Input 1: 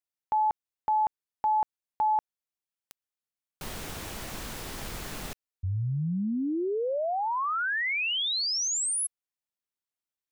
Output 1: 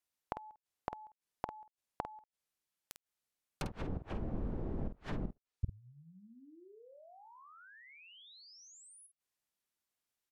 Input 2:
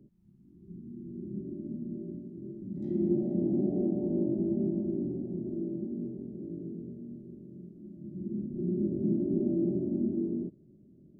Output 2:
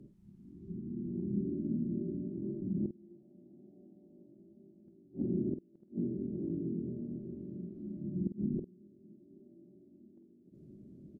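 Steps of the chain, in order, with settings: inverted gate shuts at -26 dBFS, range -33 dB; low-pass that closes with the level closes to 420 Hz, closed at -36 dBFS; doubling 49 ms -9 dB; trim +3.5 dB

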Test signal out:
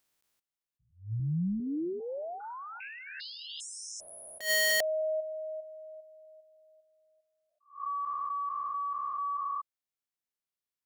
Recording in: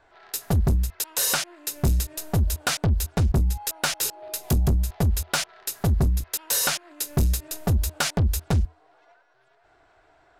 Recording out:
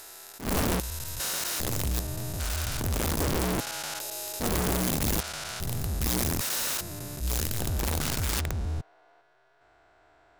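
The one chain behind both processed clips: spectrogram pixelated in time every 400 ms; integer overflow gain 23 dB; attacks held to a fixed rise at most 180 dB/s

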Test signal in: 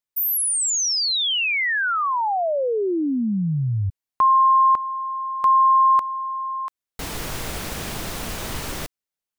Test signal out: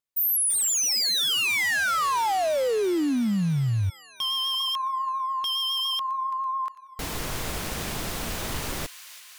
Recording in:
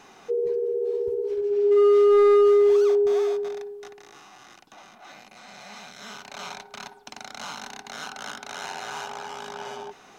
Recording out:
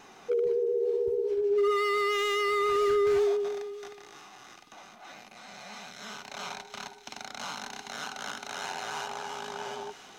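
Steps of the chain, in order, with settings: vibrato 7.2 Hz 29 cents; feedback echo behind a high-pass 333 ms, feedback 73%, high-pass 2.1 kHz, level -11.5 dB; wavefolder -19 dBFS; trim -1.5 dB

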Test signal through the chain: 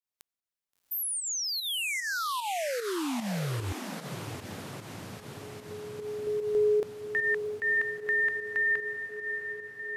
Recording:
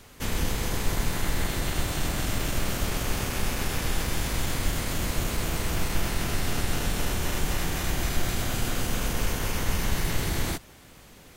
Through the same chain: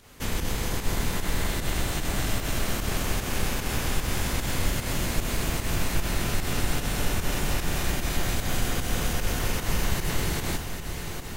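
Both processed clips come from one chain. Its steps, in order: echo that smears into a reverb 711 ms, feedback 69%, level -8.5 dB; volume shaper 150 bpm, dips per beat 1, -8 dB, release 122 ms

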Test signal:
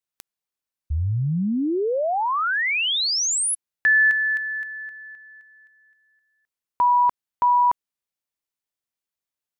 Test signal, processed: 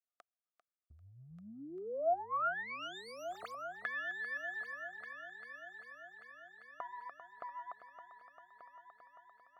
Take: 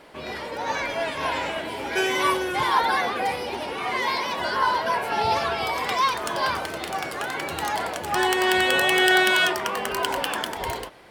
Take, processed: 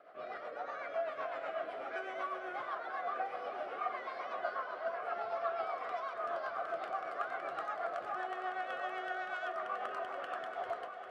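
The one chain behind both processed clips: tracing distortion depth 0.088 ms; compression, threshold -27 dBFS; rotary cabinet horn 8 Hz; two resonant band-passes 930 Hz, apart 0.8 oct; on a send: multi-head delay 395 ms, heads first and third, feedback 63%, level -12.5 dB; on the sum: trim +2.5 dB

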